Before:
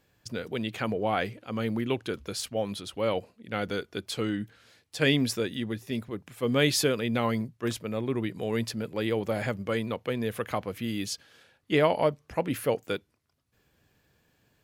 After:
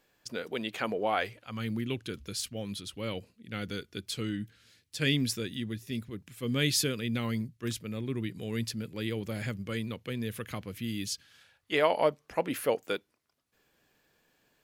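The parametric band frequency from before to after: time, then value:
parametric band −14 dB 1.9 octaves
0:01.03 92 Hz
0:01.73 750 Hz
0:11.14 750 Hz
0:12.06 87 Hz

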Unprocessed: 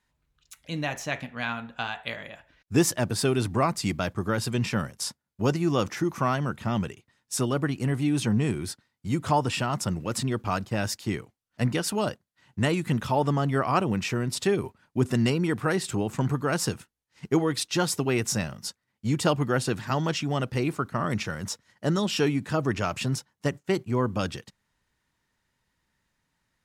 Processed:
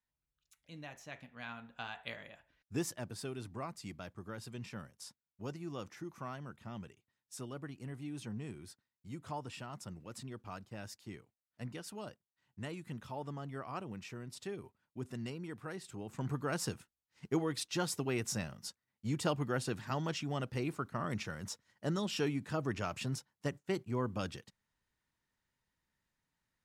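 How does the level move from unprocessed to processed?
0:01.02 −18.5 dB
0:02.09 −10 dB
0:03.34 −18.5 dB
0:15.95 −18.5 dB
0:16.35 −10 dB

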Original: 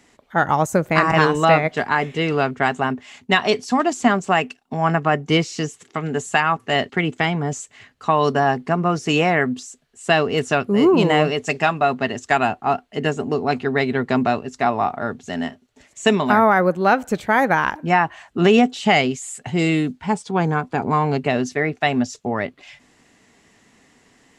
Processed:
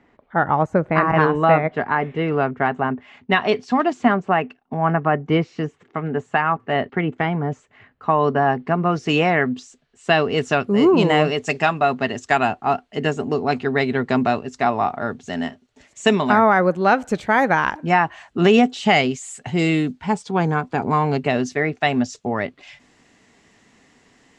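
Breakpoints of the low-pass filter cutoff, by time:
0:02.85 1,800 Hz
0:03.81 3,600 Hz
0:04.27 1,800 Hz
0:08.24 1,800 Hz
0:09.07 4,600 Hz
0:10.12 4,600 Hz
0:10.76 7,900 Hz

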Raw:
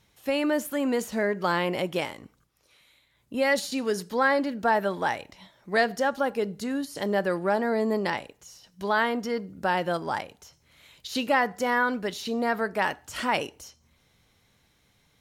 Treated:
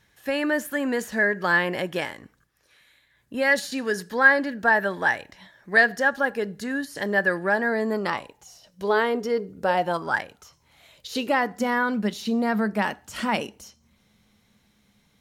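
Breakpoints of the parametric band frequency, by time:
parametric band +15 dB 0.24 octaves
0:07.85 1,700 Hz
0:08.95 420 Hz
0:09.59 420 Hz
0:10.20 1,800 Hz
0:11.68 210 Hz

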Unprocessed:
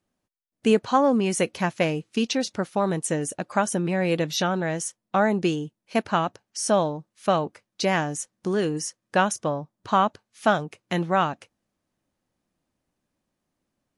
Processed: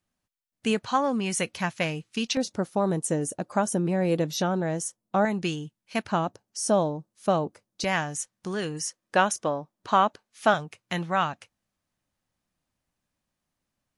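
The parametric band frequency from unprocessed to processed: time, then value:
parametric band −8.5 dB 2 octaves
390 Hz
from 0:02.37 2,400 Hz
from 0:05.25 440 Hz
from 0:06.12 2,200 Hz
from 0:07.84 330 Hz
from 0:08.85 100 Hz
from 0:10.54 350 Hz

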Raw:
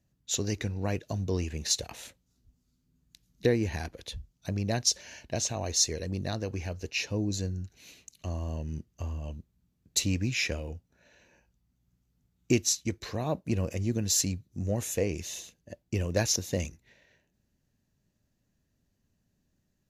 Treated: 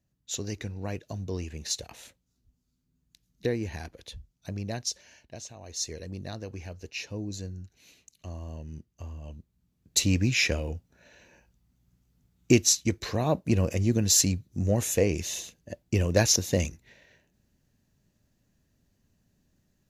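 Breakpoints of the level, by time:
0:04.63 −3.5 dB
0:05.59 −13.5 dB
0:05.90 −5 dB
0:09.17 −5 dB
0:10.16 +5 dB

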